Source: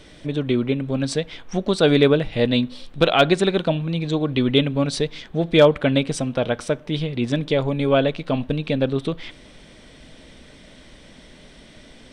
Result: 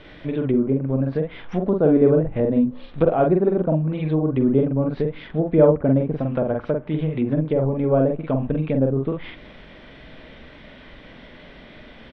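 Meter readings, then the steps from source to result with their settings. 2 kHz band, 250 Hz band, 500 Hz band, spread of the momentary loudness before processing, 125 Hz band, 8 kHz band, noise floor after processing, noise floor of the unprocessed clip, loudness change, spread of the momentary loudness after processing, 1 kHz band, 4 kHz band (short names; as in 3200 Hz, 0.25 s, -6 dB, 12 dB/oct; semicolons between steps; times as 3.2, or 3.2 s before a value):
-11.5 dB, +1.5 dB, 0.0 dB, 11 LU, +1.5 dB, under -30 dB, -44 dBFS, -47 dBFS, 0.0 dB, 10 LU, -3.0 dB, under -20 dB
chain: high shelf 4600 Hz -9.5 dB; doubler 45 ms -3 dB; treble ducked by the level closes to 850 Hz, closed at -16 dBFS; air absorption 360 m; mismatched tape noise reduction encoder only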